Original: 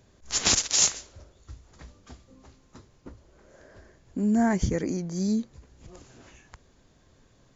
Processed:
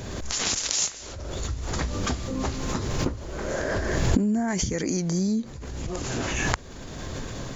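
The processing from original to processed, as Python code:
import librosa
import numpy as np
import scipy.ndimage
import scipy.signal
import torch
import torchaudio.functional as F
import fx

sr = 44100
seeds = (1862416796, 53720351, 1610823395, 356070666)

y = fx.recorder_agc(x, sr, target_db=-13.5, rise_db_per_s=26.0, max_gain_db=30)
y = fx.high_shelf(y, sr, hz=2100.0, db=10.0, at=(4.48, 5.11))
y = fx.pre_swell(y, sr, db_per_s=27.0)
y = y * librosa.db_to_amplitude(-5.0)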